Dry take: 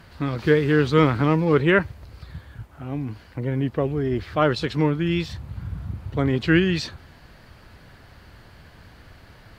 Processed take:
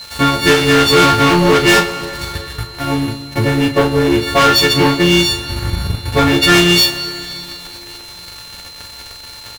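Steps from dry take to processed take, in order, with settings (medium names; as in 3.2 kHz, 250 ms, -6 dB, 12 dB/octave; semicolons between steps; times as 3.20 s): partials quantised in pitch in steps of 4 st; peaking EQ 170 Hz -7 dB 1.5 oct; waveshaping leveller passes 5; transient shaper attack +3 dB, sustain -10 dB; whistle 4.1 kHz -26 dBFS; doubling 35 ms -7.5 dB; plate-style reverb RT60 3.2 s, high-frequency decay 0.95×, DRR 10.5 dB; trim -2.5 dB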